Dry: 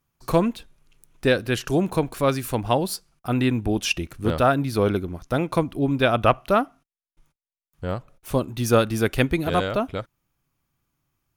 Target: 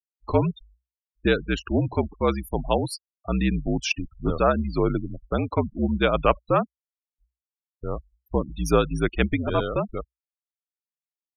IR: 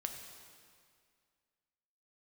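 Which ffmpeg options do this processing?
-af "afftfilt=real='re*gte(hypot(re,im),0.0447)':imag='im*gte(hypot(re,im),0.0447)':win_size=1024:overlap=0.75,afreqshift=-62,volume=-1.5dB"

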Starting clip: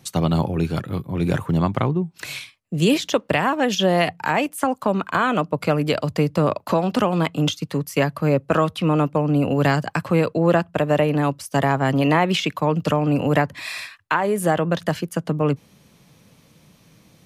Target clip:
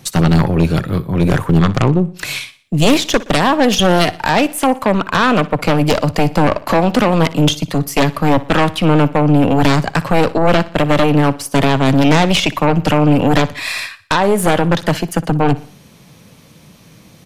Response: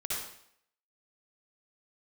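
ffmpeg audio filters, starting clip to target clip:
-af "aeval=exprs='0.531*(cos(1*acos(clip(val(0)/0.531,-1,1)))-cos(1*PI/2))+0.266*(cos(4*acos(clip(val(0)/0.531,-1,1)))-cos(4*PI/2))+0.237*(cos(5*acos(clip(val(0)/0.531,-1,1)))-cos(5*PI/2))':channel_layout=same,aecho=1:1:60|120|180|240:0.126|0.0567|0.0255|0.0115,volume=-1dB"

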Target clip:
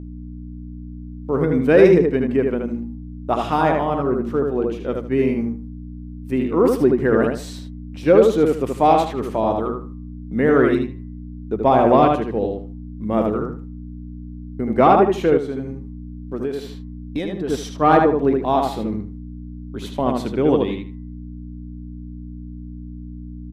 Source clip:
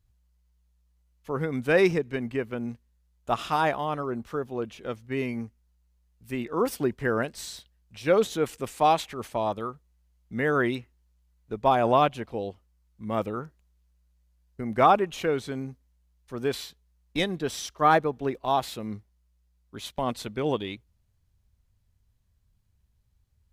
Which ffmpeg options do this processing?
ffmpeg -i in.wav -filter_complex "[0:a]highshelf=frequency=2400:gain=-6.5,asplit=2[link_01][link_02];[link_02]adelay=77,lowpass=frequency=4300:poles=1,volume=-3.5dB,asplit=2[link_03][link_04];[link_04]adelay=77,lowpass=frequency=4300:poles=1,volume=0.24,asplit=2[link_05][link_06];[link_06]adelay=77,lowpass=frequency=4300:poles=1,volume=0.24[link_07];[link_01][link_03][link_05][link_07]amix=inputs=4:normalize=0,agate=range=-29dB:threshold=-52dB:ratio=16:detection=peak,aeval=exprs='val(0)+0.0126*(sin(2*PI*60*n/s)+sin(2*PI*2*60*n/s)/2+sin(2*PI*3*60*n/s)/3+sin(2*PI*4*60*n/s)/4+sin(2*PI*5*60*n/s)/5)':channel_layout=same,acontrast=88,equalizer=frequency=310:width_type=o:width=1.8:gain=7.5,bandreject=frequency=118.4:width_type=h:width=4,bandreject=frequency=236.8:width_type=h:width=4,bandreject=frequency=355.2:width_type=h:width=4,bandreject=frequency=473.6:width_type=h:width=4,bandreject=frequency=592:width_type=h:width=4,bandreject=frequency=710.4:width_type=h:width=4,bandreject=frequency=828.8:width_type=h:width=4,bandreject=frequency=947.2:width_type=h:width=4,bandreject=frequency=1065.6:width_type=h:width=4,bandreject=frequency=1184:width_type=h:width=4,bandreject=frequency=1302.4:width_type=h:width=4,bandreject=frequency=1420.8:width_type=h:width=4,bandreject=frequency=1539.2:width_type=h:width=4,bandreject=frequency=1657.6:width_type=h:width=4,bandreject=frequency=1776:width_type=h:width=4,bandreject=frequency=1894.4:width_type=h:width=4,bandreject=frequency=2012.8:width_type=h:width=4,asettb=1/sr,asplit=3[link_08][link_09][link_10];[link_08]atrim=end=15.374[link_11];[link_09]atrim=start=15.37:end=17.48,asetpts=PTS-STARTPTS,afade=type=in:duration=0.004:curve=qsin,afade=type=out:start_time=2.106:duration=0.004:curve=qsin,acompressor=threshold=-19dB:ratio=6[link_12];[link_10]atrim=start=17.476[link_13];[link_11][link_12]acrossfade=duration=0.004:curve1=hsin:curve2=qsin[link_14];[link_14][link_13]acrossfade=duration=0.004:curve1=qsin:curve2=hsin,volume=-3dB" out.wav

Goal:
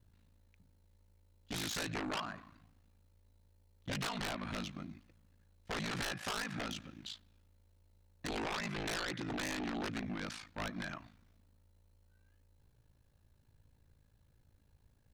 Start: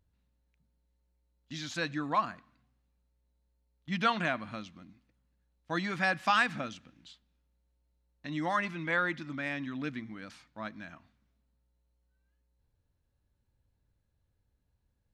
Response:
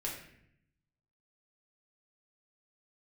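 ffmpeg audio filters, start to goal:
-af "acompressor=threshold=-36dB:ratio=8,aeval=exprs='val(0)*sin(2*PI*27*n/s)':channel_layout=same,aeval=exprs='0.0531*(cos(1*acos(clip(val(0)/0.0531,-1,1)))-cos(1*PI/2))+0.0188*(cos(7*acos(clip(val(0)/0.0531,-1,1)))-cos(7*PI/2))':channel_layout=same,asoftclip=type=tanh:threshold=-38dB,volume=7.5dB"

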